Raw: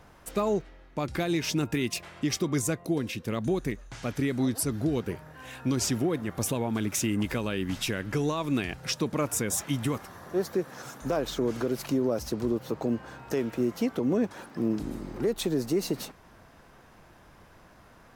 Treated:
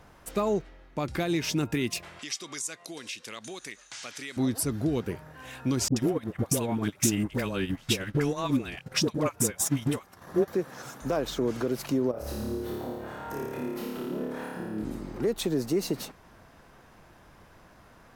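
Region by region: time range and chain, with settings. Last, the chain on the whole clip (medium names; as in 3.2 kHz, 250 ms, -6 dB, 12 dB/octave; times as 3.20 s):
2.19–4.37 s: frequency weighting ITU-R 468 + compression 2:1, threshold -40 dBFS
5.88–10.48 s: phase dispersion highs, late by 83 ms, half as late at 630 Hz + transient shaper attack +5 dB, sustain -12 dB
12.11–14.85 s: peaking EQ 5.7 kHz -10 dB 1.3 oct + compression 4:1, threshold -37 dBFS + flutter echo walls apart 4.8 m, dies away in 1.4 s
whole clip: none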